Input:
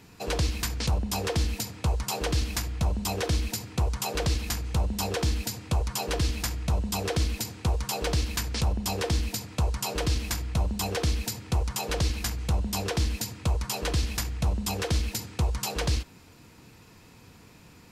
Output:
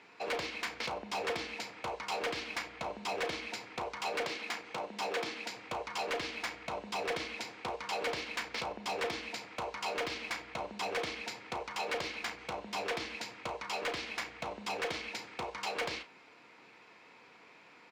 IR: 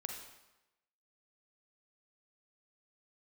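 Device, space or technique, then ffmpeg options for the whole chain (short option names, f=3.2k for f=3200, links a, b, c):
megaphone: -filter_complex "[0:a]highpass=500,lowpass=3.1k,equalizer=f=2.2k:t=o:w=0.21:g=6.5,asoftclip=type=hard:threshold=-30dB,asplit=2[a][b];[b]adelay=34,volume=-12dB[c];[a][c]amix=inputs=2:normalize=0,asettb=1/sr,asplit=3[d][e][f];[d]atrim=end=4.254[g];[e]atrim=start=4.25:end=5.56,asetpts=PTS-STARTPTS,afade=t=in:d=0.004:c=qsin,afade=t=out:st=1.306:d=0.004:c=qsin,highpass=150[h];[f]atrim=start=5.556[i];[g][h]acrossfade=d=0.004:c1=hsin:c2=qsin[j];[j][i]acrossfade=d=0.004:c1=qsin:c2=hsin"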